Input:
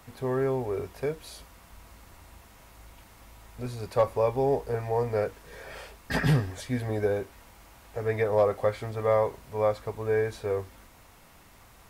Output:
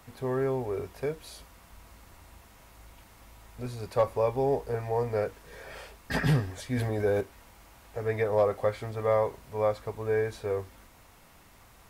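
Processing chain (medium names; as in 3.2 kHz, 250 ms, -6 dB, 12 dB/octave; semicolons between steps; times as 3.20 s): 6.73–7.21 s: decay stretcher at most 22 dB/s; trim -1.5 dB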